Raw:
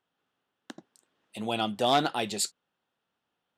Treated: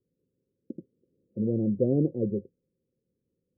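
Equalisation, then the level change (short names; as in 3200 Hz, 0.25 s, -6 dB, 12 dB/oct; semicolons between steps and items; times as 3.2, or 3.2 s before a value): rippled Chebyshev low-pass 540 Hz, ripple 3 dB; low shelf 150 Hz +8.5 dB; +7.0 dB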